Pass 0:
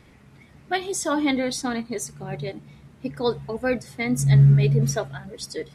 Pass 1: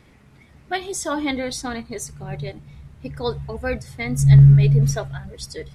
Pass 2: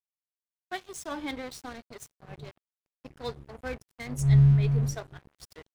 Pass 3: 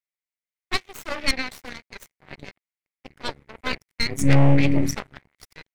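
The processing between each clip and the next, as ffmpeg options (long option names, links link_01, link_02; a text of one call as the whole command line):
ffmpeg -i in.wav -af "asubboost=boost=10:cutoff=87" out.wav
ffmpeg -i in.wav -af "aeval=exprs='sgn(val(0))*max(abs(val(0))-0.0251,0)':channel_layout=same,volume=-8.5dB" out.wav
ffmpeg -i in.wav -af "volume=16dB,asoftclip=hard,volume=-16dB,equalizer=frequency=2100:width=2.7:gain=14.5,aeval=exprs='0.224*(cos(1*acos(clip(val(0)/0.224,-1,1)))-cos(1*PI/2))+0.0447*(cos(3*acos(clip(val(0)/0.224,-1,1)))-cos(3*PI/2))+0.0891*(cos(4*acos(clip(val(0)/0.224,-1,1)))-cos(4*PI/2))+0.0251*(cos(8*acos(clip(val(0)/0.224,-1,1)))-cos(8*PI/2))':channel_layout=same,volume=3.5dB" out.wav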